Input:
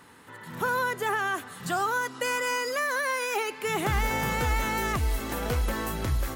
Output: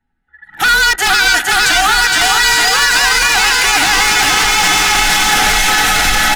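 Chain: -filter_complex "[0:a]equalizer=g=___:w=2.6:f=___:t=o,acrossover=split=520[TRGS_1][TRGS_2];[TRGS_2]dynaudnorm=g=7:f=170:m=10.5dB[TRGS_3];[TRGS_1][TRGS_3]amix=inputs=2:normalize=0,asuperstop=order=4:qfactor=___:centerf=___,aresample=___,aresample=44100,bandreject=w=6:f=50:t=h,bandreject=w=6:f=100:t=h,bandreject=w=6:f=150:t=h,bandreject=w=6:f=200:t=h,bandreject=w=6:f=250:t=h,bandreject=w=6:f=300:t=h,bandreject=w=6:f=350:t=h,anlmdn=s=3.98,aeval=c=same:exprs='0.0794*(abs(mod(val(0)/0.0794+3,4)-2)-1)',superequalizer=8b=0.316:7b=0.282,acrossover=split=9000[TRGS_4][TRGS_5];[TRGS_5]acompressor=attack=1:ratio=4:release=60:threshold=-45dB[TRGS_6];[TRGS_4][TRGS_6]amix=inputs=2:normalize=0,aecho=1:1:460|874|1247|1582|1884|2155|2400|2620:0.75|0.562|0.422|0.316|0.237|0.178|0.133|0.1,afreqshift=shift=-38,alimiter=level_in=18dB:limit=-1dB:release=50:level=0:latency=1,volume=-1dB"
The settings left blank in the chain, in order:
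-14, 150, 2.6, 1100, 32000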